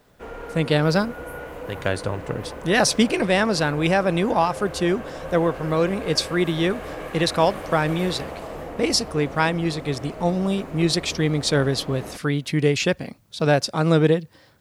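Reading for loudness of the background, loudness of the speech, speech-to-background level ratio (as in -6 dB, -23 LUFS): -35.5 LUFS, -22.5 LUFS, 13.0 dB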